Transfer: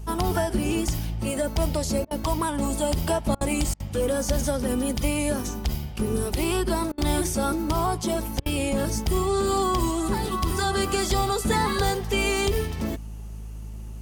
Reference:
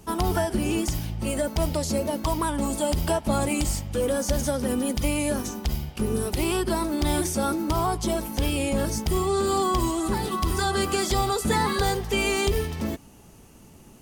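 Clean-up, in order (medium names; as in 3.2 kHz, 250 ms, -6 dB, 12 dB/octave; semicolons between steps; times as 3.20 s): de-hum 53.2 Hz, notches 4; interpolate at 2.05/3.35/3.74/6.92/8.40 s, 58 ms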